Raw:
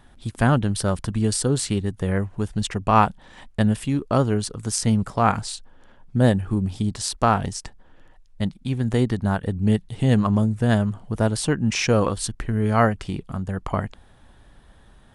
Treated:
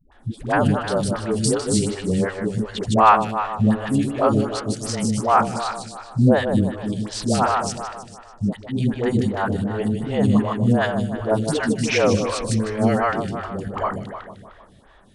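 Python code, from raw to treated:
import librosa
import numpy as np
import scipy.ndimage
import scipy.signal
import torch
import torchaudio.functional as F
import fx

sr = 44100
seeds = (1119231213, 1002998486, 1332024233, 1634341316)

p1 = scipy.signal.sosfilt(scipy.signal.butter(2, 9400.0, 'lowpass', fs=sr, output='sos'), x)
p2 = fx.low_shelf(p1, sr, hz=72.0, db=-9.0)
p3 = fx.dispersion(p2, sr, late='highs', ms=120.0, hz=430.0)
p4 = p3 + fx.echo_feedback(p3, sr, ms=153, feedback_pct=55, wet_db=-6, dry=0)
p5 = fx.stagger_phaser(p4, sr, hz=2.7)
y = F.gain(torch.from_numpy(p5), 5.0).numpy()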